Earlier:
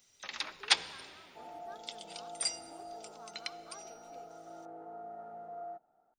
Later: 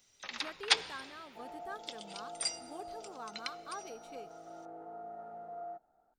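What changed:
speech +10.5 dB; master: add high shelf 9000 Hz -4.5 dB

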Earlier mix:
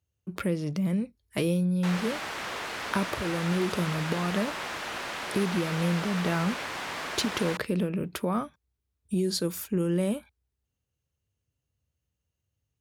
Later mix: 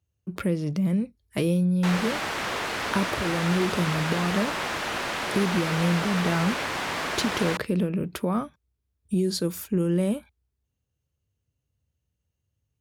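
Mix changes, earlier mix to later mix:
background +5.0 dB; master: add low shelf 420 Hz +4 dB

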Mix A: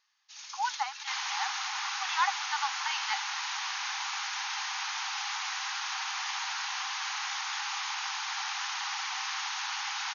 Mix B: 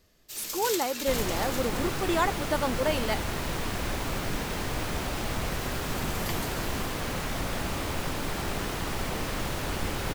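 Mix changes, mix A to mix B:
first sound +5.5 dB; second sound: add high shelf 3800 Hz -8 dB; master: remove brick-wall FIR band-pass 750–6800 Hz

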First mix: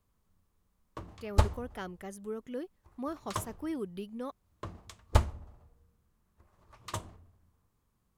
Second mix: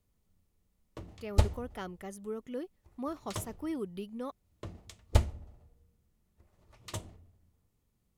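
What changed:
background: add bell 1100 Hz -10 dB 0.7 oct; master: add notch 1600 Hz, Q 12

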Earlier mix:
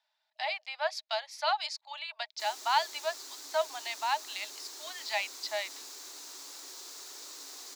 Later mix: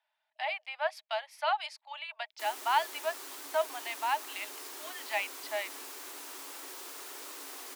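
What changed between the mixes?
background +6.5 dB; master: add band shelf 5300 Hz -11 dB 1.2 oct

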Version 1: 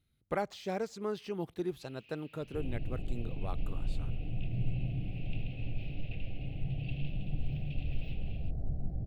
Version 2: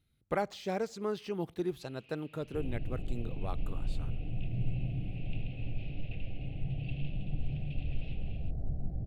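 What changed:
speech: send +8.0 dB; first sound: add air absorption 70 m

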